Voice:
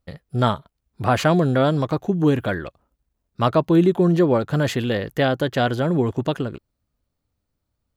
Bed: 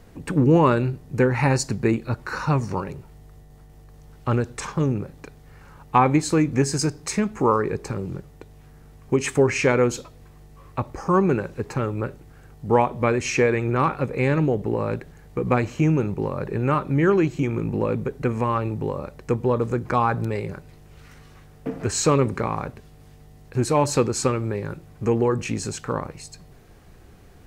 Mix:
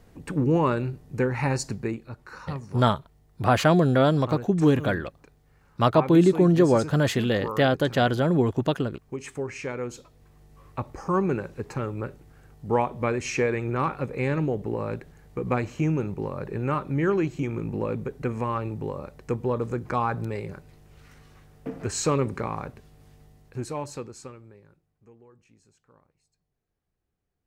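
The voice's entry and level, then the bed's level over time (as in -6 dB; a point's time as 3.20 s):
2.40 s, -1.5 dB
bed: 1.72 s -5.5 dB
2.10 s -13.5 dB
9.77 s -13.5 dB
10.57 s -5 dB
23.24 s -5 dB
25.18 s -33.5 dB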